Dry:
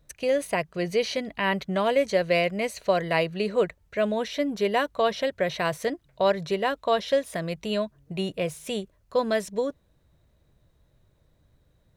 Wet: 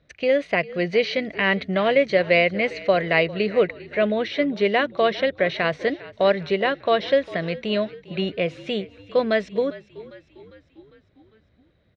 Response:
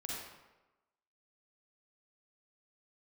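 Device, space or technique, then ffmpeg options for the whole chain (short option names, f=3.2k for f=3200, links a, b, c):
frequency-shifting delay pedal into a guitar cabinet: -filter_complex "[0:a]asplit=6[a][b][c][d][e][f];[b]adelay=401,afreqshift=-44,volume=-18.5dB[g];[c]adelay=802,afreqshift=-88,volume=-23.4dB[h];[d]adelay=1203,afreqshift=-132,volume=-28.3dB[i];[e]adelay=1604,afreqshift=-176,volume=-33.1dB[j];[f]adelay=2005,afreqshift=-220,volume=-38dB[k];[a][g][h][i][j][k]amix=inputs=6:normalize=0,highpass=80,equalizer=f=130:t=q:w=4:g=-8,equalizer=f=940:t=q:w=4:g=-8,equalizer=f=2.1k:t=q:w=4:g=5,lowpass=f=4.2k:w=0.5412,lowpass=f=4.2k:w=1.3066,volume=4.5dB"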